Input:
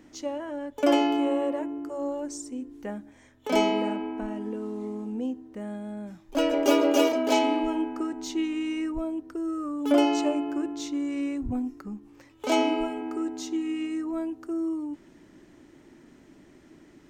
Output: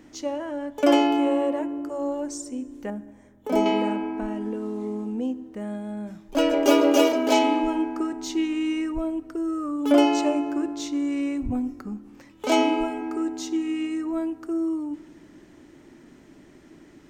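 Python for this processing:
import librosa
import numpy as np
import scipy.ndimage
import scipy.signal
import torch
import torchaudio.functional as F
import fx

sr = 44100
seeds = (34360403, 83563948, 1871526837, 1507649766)

y = fx.peak_eq(x, sr, hz=3700.0, db=-12.5, octaves=2.9, at=(2.9, 3.66))
y = fx.rev_plate(y, sr, seeds[0], rt60_s=1.7, hf_ratio=0.7, predelay_ms=0, drr_db=17.0)
y = y * 10.0 ** (3.0 / 20.0)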